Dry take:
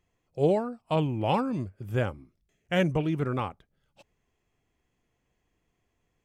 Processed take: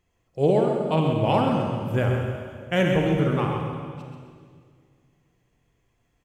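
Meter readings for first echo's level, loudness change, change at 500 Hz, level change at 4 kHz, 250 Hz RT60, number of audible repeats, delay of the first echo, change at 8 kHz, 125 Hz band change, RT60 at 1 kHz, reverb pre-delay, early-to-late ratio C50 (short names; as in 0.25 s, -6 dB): -7.0 dB, +5.0 dB, +6.0 dB, +5.0 dB, 2.4 s, 1, 0.132 s, n/a, +6.5 dB, 1.8 s, 31 ms, 1.0 dB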